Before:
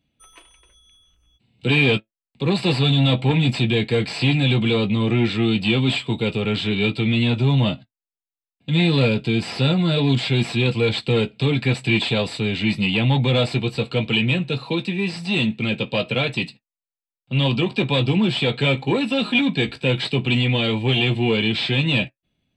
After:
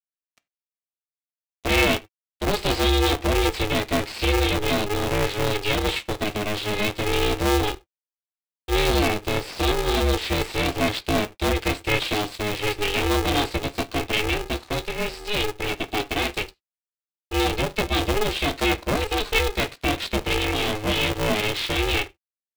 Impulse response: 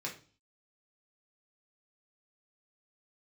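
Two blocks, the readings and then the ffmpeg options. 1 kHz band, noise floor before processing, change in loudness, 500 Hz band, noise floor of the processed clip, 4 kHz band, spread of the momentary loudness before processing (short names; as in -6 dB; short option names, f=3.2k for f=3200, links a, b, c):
+5.0 dB, under -85 dBFS, -3.5 dB, -1.0 dB, under -85 dBFS, -2.5 dB, 6 LU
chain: -filter_complex "[0:a]aeval=exprs='sgn(val(0))*max(abs(val(0))-0.0126,0)':c=same,asplit=2[a][b];[1:a]atrim=start_sample=2205,atrim=end_sample=4410[c];[b][c]afir=irnorm=-1:irlink=0,volume=-12dB[d];[a][d]amix=inputs=2:normalize=0,aeval=exprs='val(0)*sgn(sin(2*PI*210*n/s))':c=same,volume=-3.5dB"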